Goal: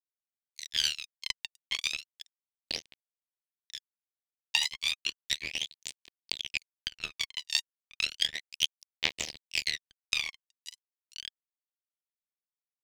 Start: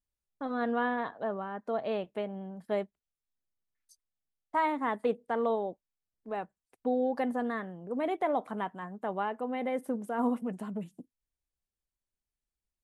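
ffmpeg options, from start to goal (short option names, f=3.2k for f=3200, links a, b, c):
-filter_complex "[0:a]afftfilt=real='re':imag='-im':win_size=2048:overlap=0.75,aeval=exprs='val(0)+0.00112*(sin(2*PI*60*n/s)+sin(2*PI*2*60*n/s)/2+sin(2*PI*3*60*n/s)/3+sin(2*PI*4*60*n/s)/4+sin(2*PI*5*60*n/s)/5)':c=same,aeval=exprs='val(0)*sin(2*PI*38*n/s)':c=same,acrossover=split=480[a][b];[b]dynaudnorm=f=170:g=7:m=6dB[c];[a][c]amix=inputs=2:normalize=0,aemphasis=mode=production:type=75fm,asplit=2[d][e];[e]aecho=0:1:988|1976|2964|3952|4940:0.562|0.247|0.109|0.0479|0.0211[f];[d][f]amix=inputs=2:normalize=0,highpass=f=280:t=q:w=0.5412,highpass=f=280:t=q:w=1.307,lowpass=f=3.3k:t=q:w=0.5176,lowpass=f=3.3k:t=q:w=0.7071,lowpass=f=3.3k:t=q:w=1.932,afreqshift=-110,acrusher=bits=3:mix=0:aa=0.5,acompressor=threshold=-46dB:ratio=16,aexciter=amount=15:drive=7.9:freq=2.2k,aphaser=in_gain=1:out_gain=1:delay=1.1:decay=0.76:speed=0.33:type=triangular"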